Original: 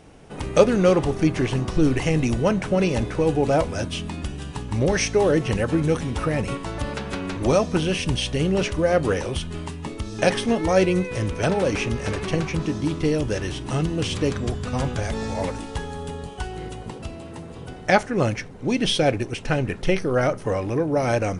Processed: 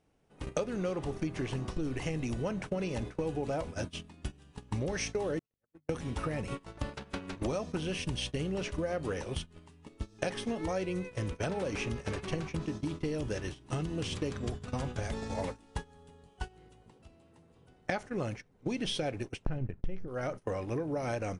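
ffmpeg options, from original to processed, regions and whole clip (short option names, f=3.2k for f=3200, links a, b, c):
-filter_complex "[0:a]asettb=1/sr,asplit=3[a][b][c];[a]atrim=end=5.394[d];[b]atrim=start=5.39:end=5.89,asetpts=PTS-STARTPTS,afade=t=in:d=0.004:c=qsin,afade=t=out:st=0.496:d=0.004:c=qsin,agate=range=-48dB:threshold=-17dB:ratio=16:release=100:detection=peak,bandreject=f=50:t=h:w=6,bandreject=f=100:t=h:w=6,bandreject=f=150:t=h:w=6,bandreject=f=200:t=h:w=6,bandreject=f=250:t=h:w=6[e];[c]atrim=start=5.886[f];[d][e]acrossfade=d=0.004:c1=hsin:c2=qsin[g];[g][f]acrossfade=d=0.004:c1=qsin:c2=hsin,asettb=1/sr,asplit=3[h][i][j];[h]atrim=end=19.454[k];[i]atrim=start=19.45:end=20.08,asetpts=PTS-STARTPTS,afade=t=in:d=0.004:c=qsin,afade=t=out:st=0.626:d=0.004:c=qsin,aemphasis=mode=reproduction:type=riaa,agate=range=-16dB:threshold=-15dB:ratio=16:release=100:detection=peak[l];[j]atrim=start=20.076[m];[k][l]acrossfade=d=0.004:c1=hsin:c2=qsin[n];[n][m]acrossfade=d=0.004:c1=qsin:c2=hsin,agate=range=-24dB:threshold=-26dB:ratio=16:detection=peak,acompressor=threshold=-32dB:ratio=6"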